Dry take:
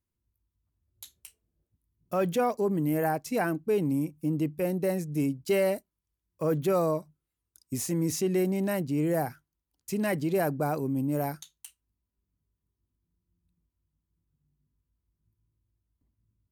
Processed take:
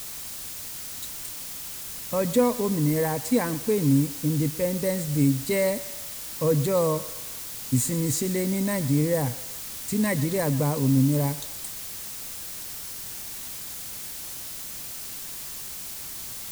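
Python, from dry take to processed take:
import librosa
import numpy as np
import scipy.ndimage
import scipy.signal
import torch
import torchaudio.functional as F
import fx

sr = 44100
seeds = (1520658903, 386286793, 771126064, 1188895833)

p1 = fx.ripple_eq(x, sr, per_octave=1.0, db=11)
p2 = fx.dmg_noise_colour(p1, sr, seeds[0], colour='white', level_db=-42.0)
p3 = fx.bass_treble(p2, sr, bass_db=9, treble_db=6)
y = p3 + fx.echo_thinned(p3, sr, ms=125, feedback_pct=56, hz=390.0, wet_db=-16, dry=0)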